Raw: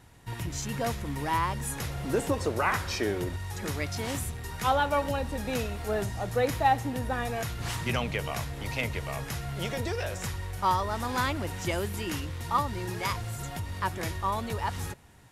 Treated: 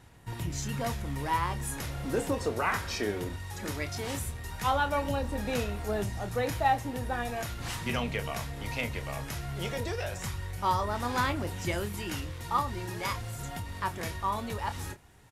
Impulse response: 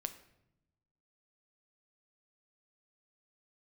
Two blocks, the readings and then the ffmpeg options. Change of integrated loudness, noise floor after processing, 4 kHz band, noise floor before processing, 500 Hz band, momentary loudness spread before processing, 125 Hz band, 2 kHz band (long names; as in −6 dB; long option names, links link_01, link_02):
−2.0 dB, −42 dBFS, −2.0 dB, −40 dBFS, −2.5 dB, 8 LU, −2.0 dB, −1.5 dB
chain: -filter_complex "[0:a]asplit=2[link_01][link_02];[link_02]adelay=29,volume=-10dB[link_03];[link_01][link_03]amix=inputs=2:normalize=0,aphaser=in_gain=1:out_gain=1:delay=4.4:decay=0.22:speed=0.18:type=sinusoidal,volume=-2.5dB"